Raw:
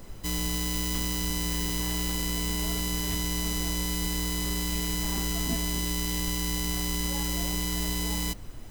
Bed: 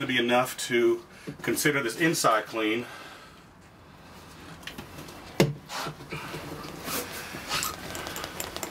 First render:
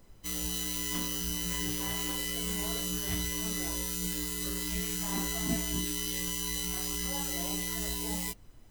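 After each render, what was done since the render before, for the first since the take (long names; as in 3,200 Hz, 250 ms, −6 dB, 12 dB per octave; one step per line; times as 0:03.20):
noise reduction from a noise print 13 dB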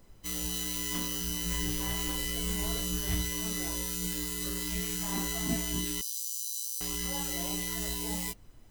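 0:01.46–0:03.22: low-shelf EQ 62 Hz +11.5 dB
0:06.01–0:06.81: inverse Chebyshev high-pass filter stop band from 2,200 Hz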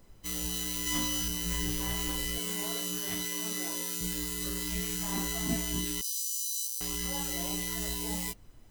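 0:00.85–0:01.28: double-tracking delay 13 ms −3 dB
0:02.38–0:04.01: high-pass filter 220 Hz
0:06.02–0:06.67: double-tracking delay 21 ms −4 dB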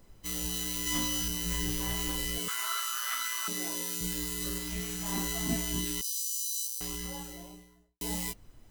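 0:02.48–0:03.48: high-pass with resonance 1,300 Hz, resonance Q 11
0:04.58–0:05.06: tube saturation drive 22 dB, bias 0.35
0:06.60–0:08.01: fade out and dull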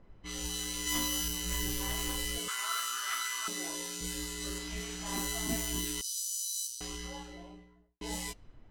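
low-pass that shuts in the quiet parts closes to 1,900 Hz, open at −28 dBFS
dynamic equaliser 150 Hz, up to −7 dB, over −52 dBFS, Q 1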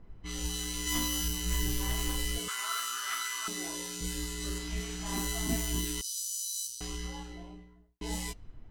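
low-shelf EQ 190 Hz +7 dB
notch filter 560 Hz, Q 12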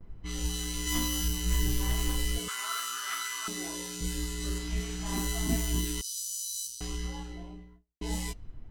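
noise gate with hold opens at −49 dBFS
low-shelf EQ 260 Hz +4.5 dB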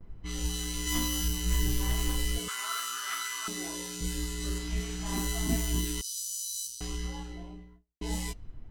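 no processing that can be heard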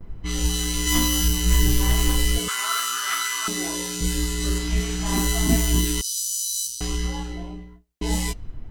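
level +9.5 dB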